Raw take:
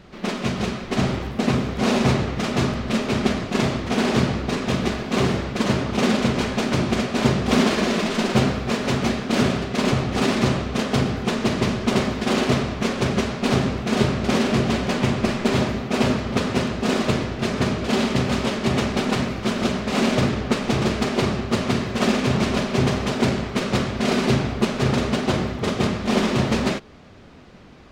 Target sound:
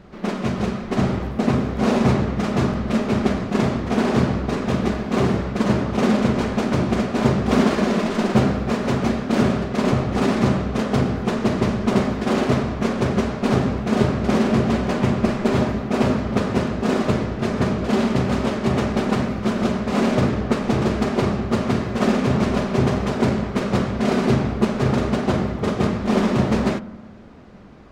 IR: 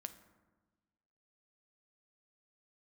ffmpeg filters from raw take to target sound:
-filter_complex "[0:a]asplit=2[s0][s1];[1:a]atrim=start_sample=2205,lowpass=2000[s2];[s1][s2]afir=irnorm=-1:irlink=0,volume=1.68[s3];[s0][s3]amix=inputs=2:normalize=0,volume=0.596"

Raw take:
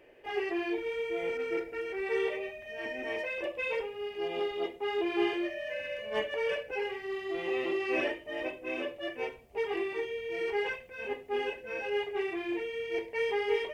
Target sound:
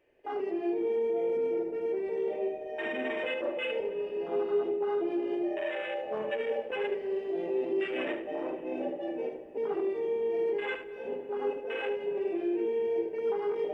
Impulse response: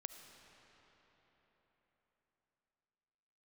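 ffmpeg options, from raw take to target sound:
-filter_complex "[0:a]alimiter=level_in=1.88:limit=0.0631:level=0:latency=1:release=12,volume=0.531,afwtdn=0.0141,asplit=2[s0][s1];[1:a]atrim=start_sample=2205,lowshelf=f=380:g=12,adelay=74[s2];[s1][s2]afir=irnorm=-1:irlink=0,volume=0.596[s3];[s0][s3]amix=inputs=2:normalize=0,volume=1.68"

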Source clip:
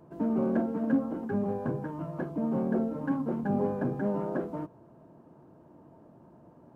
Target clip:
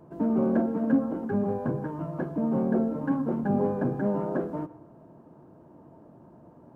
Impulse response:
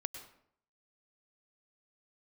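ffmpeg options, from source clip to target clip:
-filter_complex "[0:a]asplit=2[s0][s1];[1:a]atrim=start_sample=2205,lowpass=2100[s2];[s1][s2]afir=irnorm=-1:irlink=0,volume=0.501[s3];[s0][s3]amix=inputs=2:normalize=0"

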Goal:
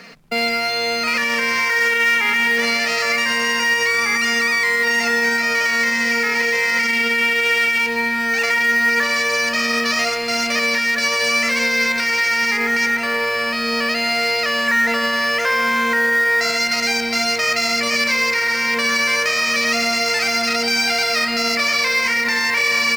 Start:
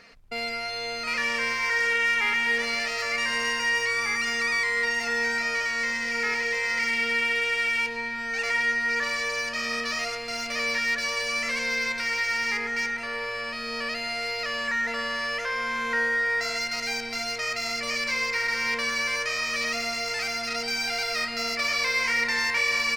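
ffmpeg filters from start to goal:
-filter_complex "[0:a]lowshelf=f=110:t=q:w=3:g=-13,acrossover=split=300|4300[s0][s1][s2];[s1]acrusher=bits=5:mode=log:mix=0:aa=0.000001[s3];[s0][s3][s2]amix=inputs=3:normalize=0,alimiter=level_in=9.44:limit=0.891:release=50:level=0:latency=1,volume=0.376"

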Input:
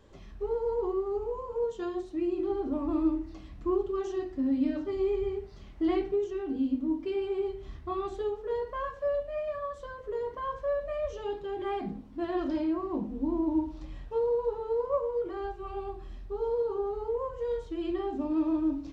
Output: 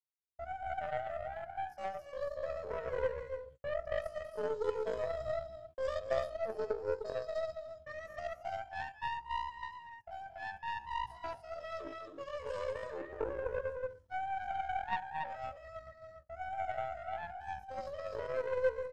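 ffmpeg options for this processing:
-filter_complex "[0:a]agate=range=0.00178:threshold=0.0141:ratio=16:detection=peak,asplit=2[s0][s1];[s1]aecho=0:1:218.7|279.9:0.398|0.708[s2];[s0][s2]amix=inputs=2:normalize=0,aeval=exprs='0.168*(cos(1*acos(clip(val(0)/0.168,-1,1)))-cos(1*PI/2))+0.0335*(cos(3*acos(clip(val(0)/0.168,-1,1)))-cos(3*PI/2))+0.00841*(cos(4*acos(clip(val(0)/0.168,-1,1)))-cos(4*PI/2))+0.0015*(cos(7*acos(clip(val(0)/0.168,-1,1)))-cos(7*PI/2))':c=same,asetrate=72056,aresample=44100,atempo=0.612027,volume=0.596"

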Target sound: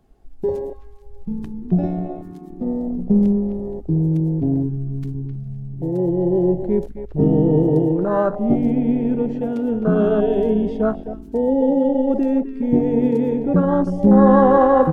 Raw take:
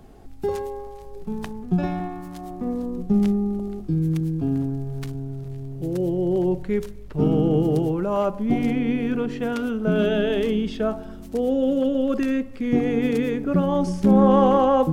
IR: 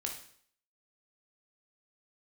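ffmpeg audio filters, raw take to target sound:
-filter_complex "[0:a]asplit=2[s0][s1];[s1]adelay=260,highpass=300,lowpass=3400,asoftclip=type=hard:threshold=0.178,volume=0.398[s2];[s0][s2]amix=inputs=2:normalize=0,afwtdn=0.0708,volume=1.58"

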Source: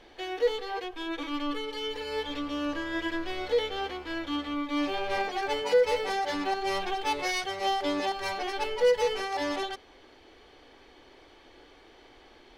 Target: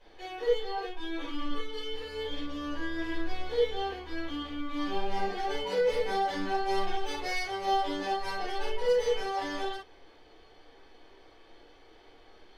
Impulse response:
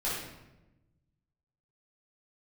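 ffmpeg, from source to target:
-filter_complex "[0:a]asettb=1/sr,asplit=3[s0][s1][s2];[s0]atrim=end=4.874[s3];[s1]atrim=start=4.87:end=6.44,asetpts=PTS-STARTPTS,afade=t=in:d=0.004:c=qsin,afade=t=out:st=1.566:d=0.004:c=qsin,equalizer=f=210:t=o:w=0.58:g=8.5[s4];[s2]atrim=start=6.436[s5];[s3][s4]acrossfade=d=0.004:c1=hsin:c2=qsin[s6];[s6][s5]acrossfade=d=0.004:c1=qsin:c2=hsin[s7];[1:a]atrim=start_sample=2205,atrim=end_sample=3528[s8];[s7][s8]afir=irnorm=-1:irlink=0,volume=0.376"

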